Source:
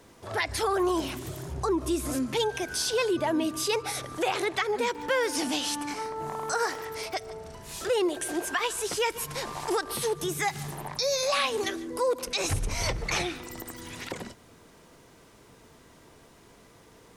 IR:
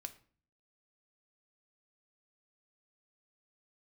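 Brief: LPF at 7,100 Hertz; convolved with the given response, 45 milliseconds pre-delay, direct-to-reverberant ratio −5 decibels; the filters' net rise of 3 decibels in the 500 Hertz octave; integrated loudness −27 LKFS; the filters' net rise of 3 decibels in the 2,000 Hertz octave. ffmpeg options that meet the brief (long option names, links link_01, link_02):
-filter_complex "[0:a]lowpass=7100,equalizer=frequency=500:width_type=o:gain=3.5,equalizer=frequency=2000:width_type=o:gain=3.5,asplit=2[link_01][link_02];[1:a]atrim=start_sample=2205,adelay=45[link_03];[link_02][link_03]afir=irnorm=-1:irlink=0,volume=9dB[link_04];[link_01][link_04]amix=inputs=2:normalize=0,volume=-5dB"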